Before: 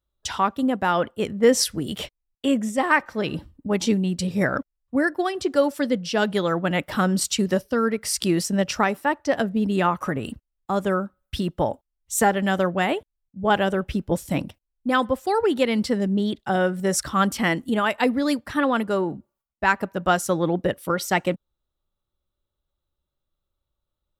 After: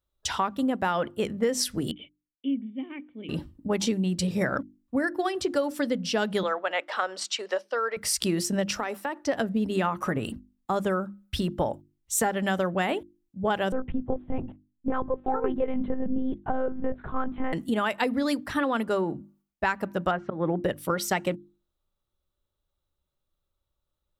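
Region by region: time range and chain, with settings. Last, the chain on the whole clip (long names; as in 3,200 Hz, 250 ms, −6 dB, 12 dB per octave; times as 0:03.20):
0:01.91–0:03.29: formant resonators in series i + low-shelf EQ 200 Hz −11.5 dB
0:06.43–0:07.97: high-pass filter 500 Hz 24 dB per octave + high-frequency loss of the air 110 metres
0:08.77–0:09.22: high-pass filter 250 Hz 24 dB per octave + downward compressor 5 to 1, threshold −25 dBFS
0:13.72–0:17.53: low-pass filter 1,100 Hz + one-pitch LPC vocoder at 8 kHz 260 Hz
0:20.11–0:20.64: low-pass filter 2,300 Hz 24 dB per octave + volume swells 166 ms
whole clip: mains-hum notches 50/100/150/200/250/300/350 Hz; downward compressor, threshold −22 dBFS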